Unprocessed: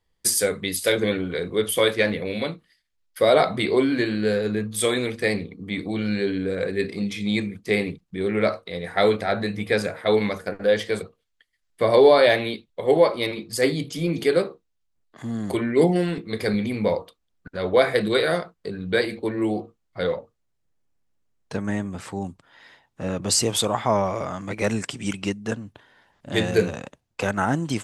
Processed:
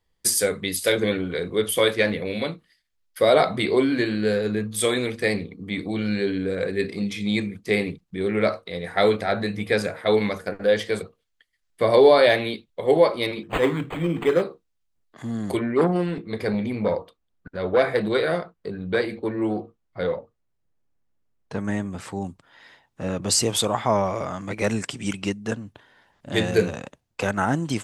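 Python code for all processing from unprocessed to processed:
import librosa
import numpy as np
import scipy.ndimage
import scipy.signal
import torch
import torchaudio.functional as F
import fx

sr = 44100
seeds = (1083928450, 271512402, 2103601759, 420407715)

y = fx.chain(x, sr, fx.high_shelf(hz=6000.0, db=11.5),
    fx.resample_linear(factor=8), at=(13.43, 14.42))
y = fx.chain(y, sr, fx.high_shelf(hz=3300.0, db=-9.0),
    fx.transformer_sat(knee_hz=720.0), at=(15.59, 21.57))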